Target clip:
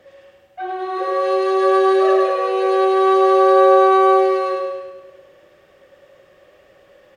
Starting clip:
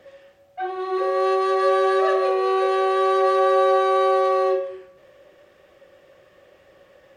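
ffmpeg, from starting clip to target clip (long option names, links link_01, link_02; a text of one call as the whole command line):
ffmpeg -i in.wav -af "aecho=1:1:102|204|306|408|510|612|714:0.668|0.354|0.188|0.0995|0.0527|0.0279|0.0148" out.wav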